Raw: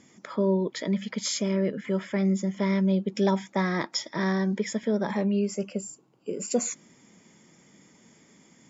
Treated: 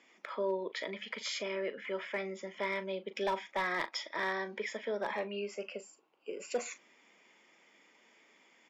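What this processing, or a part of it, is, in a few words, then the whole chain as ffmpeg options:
megaphone: -filter_complex "[0:a]highpass=190,highpass=520,lowpass=3700,equalizer=f=2600:t=o:w=0.58:g=7,asoftclip=type=hard:threshold=0.075,asplit=2[s0][s1];[s1]adelay=39,volume=0.211[s2];[s0][s2]amix=inputs=2:normalize=0,volume=0.708"

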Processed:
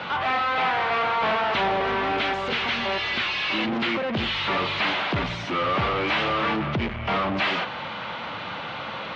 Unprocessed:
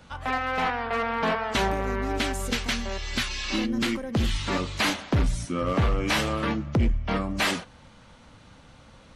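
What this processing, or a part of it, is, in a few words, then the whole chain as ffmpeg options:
overdrive pedal into a guitar cabinet: -filter_complex "[0:a]asplit=2[s0][s1];[s1]highpass=f=720:p=1,volume=44.7,asoftclip=type=tanh:threshold=0.141[s2];[s0][s2]amix=inputs=2:normalize=0,lowpass=f=5500:p=1,volume=0.501,highpass=99,equalizer=f=260:t=q:w=4:g=-7,equalizer=f=500:t=q:w=4:g=-3,equalizer=f=1700:t=q:w=4:g=-3,lowpass=f=3500:w=0.5412,lowpass=f=3500:w=1.3066"

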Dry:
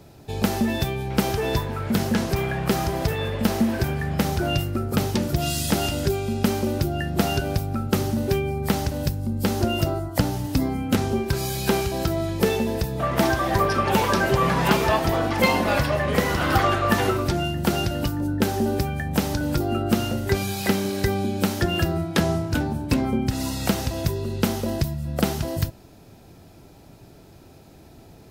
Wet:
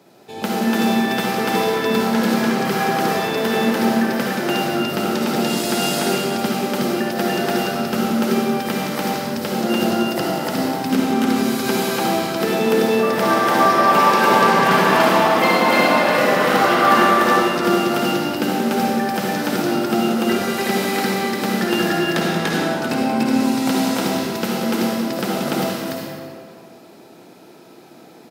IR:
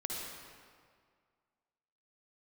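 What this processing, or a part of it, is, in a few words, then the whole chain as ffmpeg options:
stadium PA: -filter_complex "[0:a]highpass=f=180:w=0.5412,highpass=f=180:w=1.3066,equalizer=f=1500:t=o:w=2.9:g=4,aecho=1:1:180.8|291.5:0.316|1[s0];[1:a]atrim=start_sample=2205[s1];[s0][s1]afir=irnorm=-1:irlink=0,volume=0.891"

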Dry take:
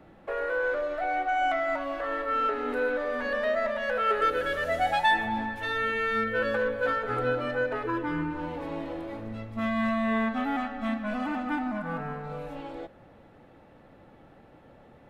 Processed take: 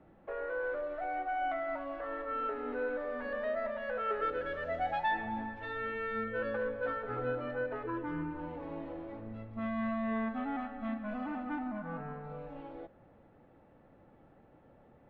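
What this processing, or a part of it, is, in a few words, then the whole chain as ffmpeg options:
phone in a pocket: -af "lowpass=3900,highshelf=f=2300:g=-10,volume=0.473"

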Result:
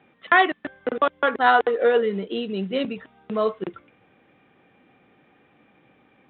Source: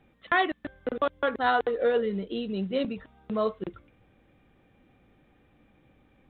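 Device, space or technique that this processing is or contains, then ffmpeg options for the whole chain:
kitchen radio: -filter_complex "[0:a]highpass=210,equalizer=f=220:t=q:w=4:g=-3,equalizer=f=310:t=q:w=4:g=-4,equalizer=f=550:t=q:w=4:g=-4,lowpass=f=3500:w=0.5412,lowpass=f=3500:w=1.3066,asettb=1/sr,asplit=3[s0][s1][s2];[s0]atrim=end=2.454[s3];[s1]atrim=start=2.45:end=3.49,asetpts=PTS-STARTPTS,afade=t=in:d=0.004:c=qsin,afade=t=out:st=1.036:d=0.004:c=qsin,equalizer=f=980:t=o:w=1.5:g=-3.5[s4];[s2]atrim=start=3.486[s5];[s3][s4]acrossfade=d=0.004:c1=hsin:c2=qsin[s6];[s6][s5]acrossfade=d=0.004:c1=qsin:c2=hsin,volume=2.51"

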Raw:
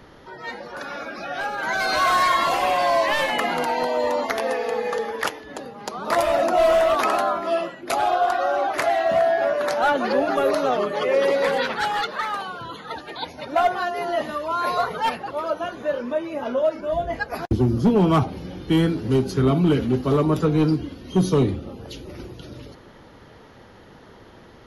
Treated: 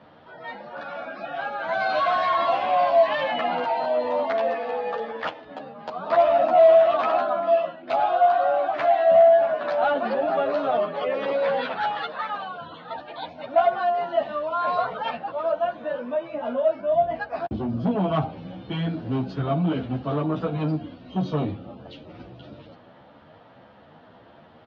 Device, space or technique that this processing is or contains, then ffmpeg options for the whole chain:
barber-pole flanger into a guitar amplifier: -filter_complex "[0:a]asplit=2[s0][s1];[s1]adelay=11.3,afreqshift=1.6[s2];[s0][s2]amix=inputs=2:normalize=1,asoftclip=type=tanh:threshold=0.178,highpass=110,equalizer=f=390:t=q:w=4:g=-9,equalizer=f=670:t=q:w=4:g=8,equalizer=f=2000:t=q:w=4:g=-5,lowpass=f=3600:w=0.5412,lowpass=f=3600:w=1.3066"

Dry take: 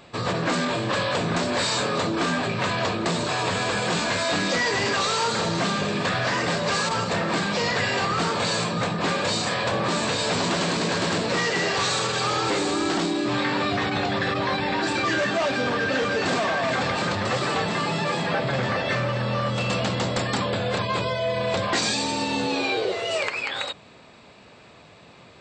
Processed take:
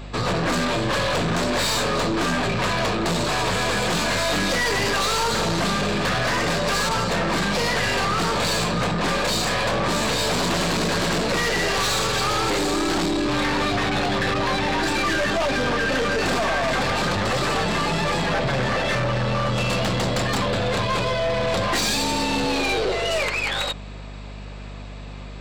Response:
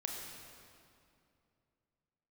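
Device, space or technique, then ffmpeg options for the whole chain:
valve amplifier with mains hum: -af "aeval=exprs='(tanh(20*val(0)+0.3)-tanh(0.3))/20':c=same,aeval=exprs='val(0)+0.00794*(sin(2*PI*50*n/s)+sin(2*PI*2*50*n/s)/2+sin(2*PI*3*50*n/s)/3+sin(2*PI*4*50*n/s)/4+sin(2*PI*5*50*n/s)/5)':c=same,volume=2.24"

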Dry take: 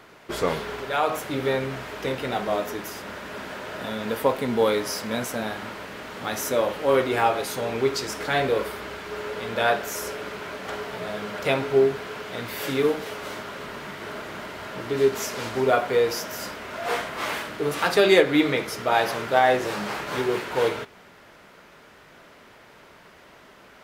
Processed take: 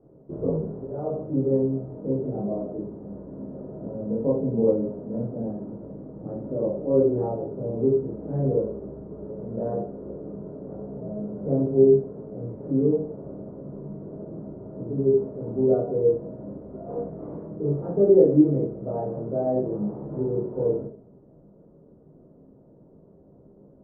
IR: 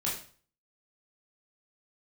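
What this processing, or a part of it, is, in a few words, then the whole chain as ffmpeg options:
next room: -filter_complex "[0:a]lowpass=f=500:w=0.5412,lowpass=f=500:w=1.3066[s0];[1:a]atrim=start_sample=2205[s1];[s0][s1]afir=irnorm=-1:irlink=0,volume=0.75"

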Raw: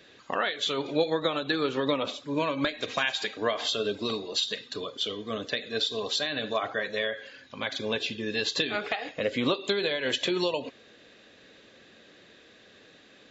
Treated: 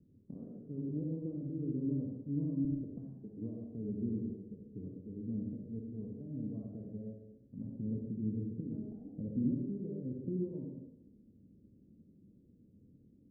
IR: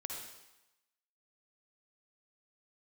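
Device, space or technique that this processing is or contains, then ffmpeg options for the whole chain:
club heard from the street: -filter_complex "[0:a]alimiter=limit=0.126:level=0:latency=1:release=51,lowpass=f=230:w=0.5412,lowpass=f=230:w=1.3066[s0];[1:a]atrim=start_sample=2205[s1];[s0][s1]afir=irnorm=-1:irlink=0,volume=2"

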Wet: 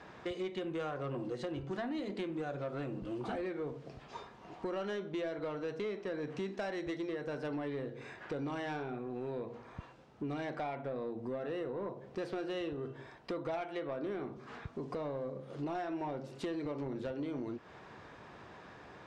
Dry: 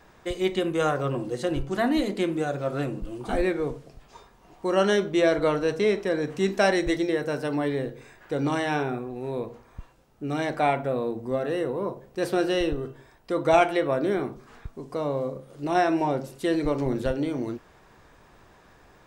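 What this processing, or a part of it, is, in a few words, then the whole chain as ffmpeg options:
AM radio: -af "highpass=100,lowpass=4400,acompressor=threshold=0.0126:ratio=6,asoftclip=type=tanh:threshold=0.0224,volume=1.41"

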